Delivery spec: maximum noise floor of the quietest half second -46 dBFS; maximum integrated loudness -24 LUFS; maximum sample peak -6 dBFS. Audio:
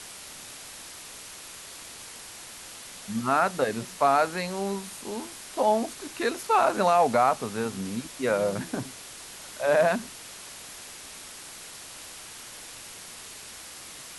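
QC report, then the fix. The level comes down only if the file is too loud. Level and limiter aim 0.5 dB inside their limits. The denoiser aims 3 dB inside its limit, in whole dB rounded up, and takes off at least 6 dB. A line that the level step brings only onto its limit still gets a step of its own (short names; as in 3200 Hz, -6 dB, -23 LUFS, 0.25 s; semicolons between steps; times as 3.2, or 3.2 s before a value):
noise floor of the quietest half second -43 dBFS: fail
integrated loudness -26.0 LUFS: OK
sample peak -10.0 dBFS: OK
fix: denoiser 6 dB, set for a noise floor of -43 dBFS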